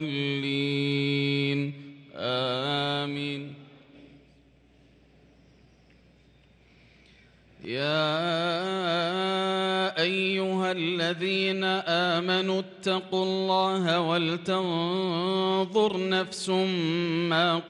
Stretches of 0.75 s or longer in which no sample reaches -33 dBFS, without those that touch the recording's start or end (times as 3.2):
3.51–7.64